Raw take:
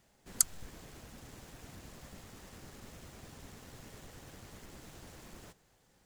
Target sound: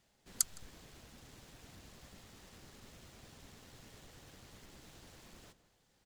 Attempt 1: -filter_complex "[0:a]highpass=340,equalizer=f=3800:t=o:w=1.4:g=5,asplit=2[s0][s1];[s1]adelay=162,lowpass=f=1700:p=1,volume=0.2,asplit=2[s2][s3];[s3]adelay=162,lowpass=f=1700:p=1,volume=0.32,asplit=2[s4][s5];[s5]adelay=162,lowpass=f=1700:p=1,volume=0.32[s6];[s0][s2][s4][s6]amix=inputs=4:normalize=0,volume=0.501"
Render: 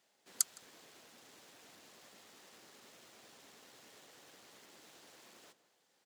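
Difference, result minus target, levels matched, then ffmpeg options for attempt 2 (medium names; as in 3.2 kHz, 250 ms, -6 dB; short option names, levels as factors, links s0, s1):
250 Hz band -12.5 dB
-filter_complex "[0:a]equalizer=f=3800:t=o:w=1.4:g=5,asplit=2[s0][s1];[s1]adelay=162,lowpass=f=1700:p=1,volume=0.2,asplit=2[s2][s3];[s3]adelay=162,lowpass=f=1700:p=1,volume=0.32,asplit=2[s4][s5];[s5]adelay=162,lowpass=f=1700:p=1,volume=0.32[s6];[s0][s2][s4][s6]amix=inputs=4:normalize=0,volume=0.501"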